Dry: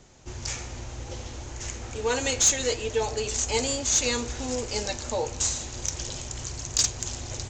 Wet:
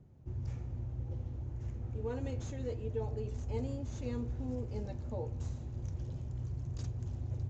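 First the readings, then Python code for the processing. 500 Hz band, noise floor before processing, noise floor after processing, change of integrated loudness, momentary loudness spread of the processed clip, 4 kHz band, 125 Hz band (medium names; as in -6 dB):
-12.0 dB, -40 dBFS, -45 dBFS, -13.0 dB, 4 LU, -31.0 dB, +1.0 dB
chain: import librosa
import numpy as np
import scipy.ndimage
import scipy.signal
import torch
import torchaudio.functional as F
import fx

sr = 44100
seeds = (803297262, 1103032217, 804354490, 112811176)

y = fx.bandpass_q(x, sr, hz=110.0, q=1.3)
y = y * librosa.db_to_amplitude(2.5)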